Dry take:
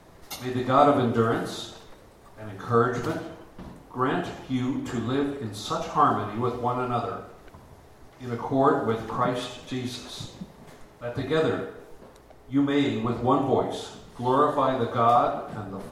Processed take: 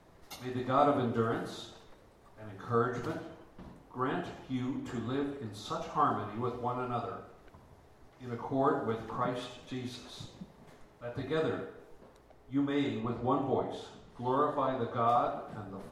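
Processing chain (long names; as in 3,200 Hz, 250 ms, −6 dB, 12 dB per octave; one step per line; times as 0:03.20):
high-shelf EQ 5,800 Hz −5 dB, from 0:13.00 −11 dB, from 0:15.07 −3.5 dB
level −8 dB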